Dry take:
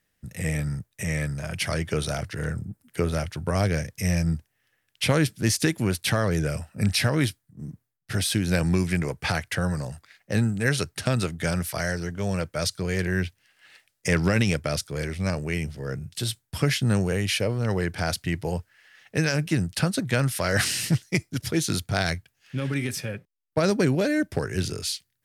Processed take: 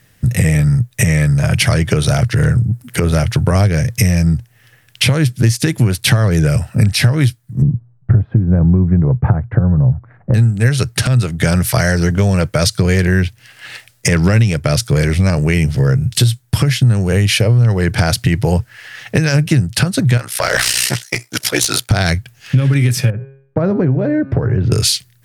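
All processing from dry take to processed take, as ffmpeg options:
ffmpeg -i in.wav -filter_complex "[0:a]asettb=1/sr,asplit=3[link_01][link_02][link_03];[link_01]atrim=end=7.624[link_04];[link_02]atrim=start=7.62:end=10.34,asetpts=PTS-STARTPTS,afade=type=in:duration=0.004:curve=qsin,afade=type=out:start_time=2.716:duration=0.004:curve=qsin,lowpass=frequency=1200:width=0.5412,lowpass=frequency=1200:width=1.3066,lowshelf=frequency=310:gain=10.5[link_05];[link_03]atrim=start=10.336[link_06];[link_04][link_05]acrossfade=duration=0.004:curve1=hsin:curve2=qsin[link_07];[link_07][link_06]acrossfade=duration=0.004:curve1=qsin:curve2=hsin,asettb=1/sr,asplit=3[link_08][link_09][link_10];[link_08]atrim=end=20.174[link_11];[link_09]atrim=start=20.17:end=21.91,asetpts=PTS-STARTPTS,afade=type=in:duration=0.004:curve=qsin,afade=type=out:start_time=1.736:duration=0.004:curve=qsin,highpass=570,aeval=exprs='val(0)*sin(2*PI*31*n/s)':channel_layout=same,aeval=exprs='clip(val(0),-1,0.0501)':channel_layout=same[link_12];[link_10]atrim=start=21.906[link_13];[link_11][link_12]acrossfade=duration=0.004:curve1=hsin:curve2=qsin[link_14];[link_14][link_13]acrossfade=duration=0.004:curve1=qsin:curve2=hsin,asettb=1/sr,asplit=3[link_15][link_16][link_17];[link_15]atrim=end=23.104[link_18];[link_16]atrim=start=23.1:end=24.72,asetpts=PTS-STARTPTS,afade=type=in:duration=0.004:curve=qsin,afade=type=out:start_time=1.616:duration=0.004:curve=qsin,lowpass=1100,bandreject=frequency=135.5:width_type=h:width=4,bandreject=frequency=271:width_type=h:width=4,bandreject=frequency=406.5:width_type=h:width=4,bandreject=frequency=542:width_type=h:width=4,bandreject=frequency=677.5:width_type=h:width=4,bandreject=frequency=813:width_type=h:width=4,bandreject=frequency=948.5:width_type=h:width=4,bandreject=frequency=1084:width_type=h:width=4,bandreject=frequency=1219.5:width_type=h:width=4,bandreject=frequency=1355:width_type=h:width=4,bandreject=frequency=1490.5:width_type=h:width=4,bandreject=frequency=1626:width_type=h:width=4,bandreject=frequency=1761.5:width_type=h:width=4,bandreject=frequency=1897:width_type=h:width=4,bandreject=frequency=2032.5:width_type=h:width=4,bandreject=frequency=2168:width_type=h:width=4,bandreject=frequency=2303.5:width_type=h:width=4,bandreject=frequency=2439:width_type=h:width=4,bandreject=frequency=2574.5:width_type=h:width=4,bandreject=frequency=2710:width_type=h:width=4,bandreject=frequency=2845.5:width_type=h:width=4,bandreject=frequency=2981:width_type=h:width=4,bandreject=frequency=3116.5:width_type=h:width=4,bandreject=frequency=3252:width_type=h:width=4,bandreject=frequency=3387.5:width_type=h:width=4,bandreject=frequency=3523:width_type=h:width=4,bandreject=frequency=3658.5:width_type=h:width=4,bandreject=frequency=3794:width_type=h:width=4,bandreject=frequency=3929.5:width_type=h:width=4,bandreject=frequency=4065:width_type=h:width=4,bandreject=frequency=4200.5:width_type=h:width=4,bandreject=frequency=4336:width_type=h:width=4,bandreject=frequency=4471.5:width_type=h:width=4,bandreject=frequency=4607:width_type=h:width=4,bandreject=frequency=4742.5:width_type=h:width=4,bandreject=frequency=4878:width_type=h:width=4,acompressor=threshold=-40dB:ratio=2:attack=3.2:release=140:knee=1:detection=peak[link_19];[link_17]atrim=start=24.716[link_20];[link_18][link_19]acrossfade=duration=0.004:curve1=hsin:curve2=qsin[link_21];[link_21][link_20]acrossfade=duration=0.004:curve1=qsin:curve2=hsin,equalizer=frequency=120:width_type=o:width=0.52:gain=13.5,acompressor=threshold=-31dB:ratio=6,alimiter=level_in=21.5dB:limit=-1dB:release=50:level=0:latency=1,volume=-1dB" out.wav

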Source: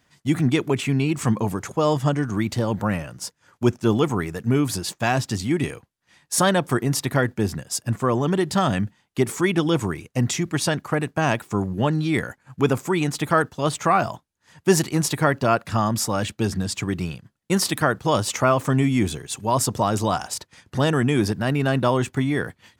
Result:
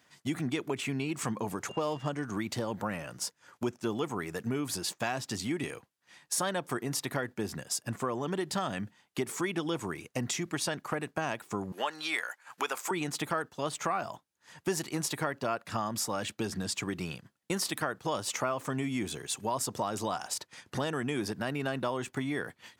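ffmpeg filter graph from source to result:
ffmpeg -i in.wav -filter_complex "[0:a]asettb=1/sr,asplit=3[link_01][link_02][link_03];[link_01]atrim=end=1.694[link_04];[link_02]atrim=start=1.69:end=2.09,asetpts=PTS-STARTPTS,afade=type=in:duration=0.004:curve=qsin,afade=type=out:start_time=0.396:duration=0.004:curve=qsin,aeval=exprs='val(0)+0.00708*sin(2*PI*2800*n/s)':channel_layout=same,adynamicsmooth=sensitivity=6.5:basefreq=3000[link_05];[link_03]atrim=start=2.086[link_06];[link_04][link_05]acrossfade=duration=0.004:curve1=hsin:curve2=qsin[link_07];[link_07][link_06]acrossfade=duration=0.004:curve1=qsin:curve2=hsin,asettb=1/sr,asplit=3[link_08][link_09][link_10];[link_08]atrim=end=11.724[link_11];[link_09]atrim=start=11.72:end=12.91,asetpts=PTS-STARTPTS,afade=type=in:duration=0.004:curve=qsin,afade=type=out:start_time=1.186:duration=0.004:curve=qsin,highpass=880,acontrast=47[link_12];[link_10]atrim=start=12.906[link_13];[link_11][link_12]acrossfade=duration=0.004:curve1=hsin:curve2=qsin[link_14];[link_14][link_13]acrossfade=duration=0.004:curve1=qsin:curve2=hsin,highpass=frequency=300:poles=1,acompressor=threshold=-32dB:ratio=3" out.wav

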